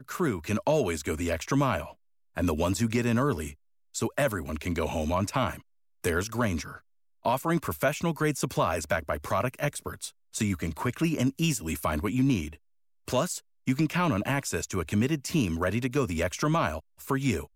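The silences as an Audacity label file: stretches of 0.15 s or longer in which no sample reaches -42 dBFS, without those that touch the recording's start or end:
1.910000	2.370000	silence
3.540000	3.950000	silence
5.600000	6.040000	silence
6.780000	7.250000	silence
10.100000	10.330000	silence
12.550000	13.080000	silence
13.390000	13.670000	silence
16.800000	17.000000	silence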